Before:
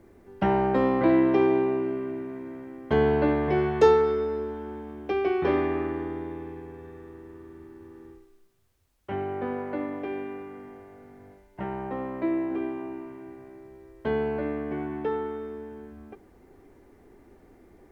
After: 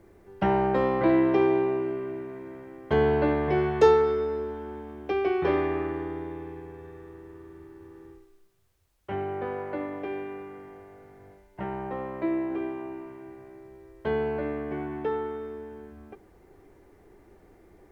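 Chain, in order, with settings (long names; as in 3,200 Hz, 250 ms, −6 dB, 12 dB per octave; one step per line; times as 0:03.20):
parametric band 250 Hz −12 dB 0.2 octaves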